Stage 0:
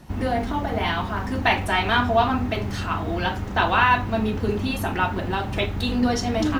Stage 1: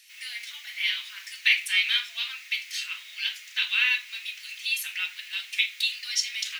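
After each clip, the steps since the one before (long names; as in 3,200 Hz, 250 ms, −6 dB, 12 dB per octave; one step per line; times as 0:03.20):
Chebyshev high-pass filter 2,200 Hz, order 4
level +5.5 dB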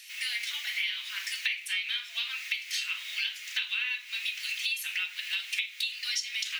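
parametric band 2,700 Hz +2 dB
downward compressor 12 to 1, threshold −34 dBFS, peak gain reduction 19.5 dB
level +5.5 dB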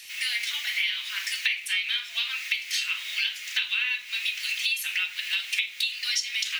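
surface crackle 110 per second −47 dBFS
level +4.5 dB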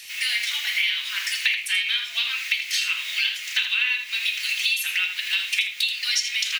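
single-tap delay 81 ms −9 dB
level +3.5 dB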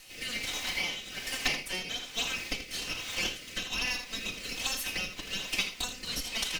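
lower of the sound and its delayed copy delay 3.9 ms
rotating-speaker cabinet horn 1.2 Hz
level −5.5 dB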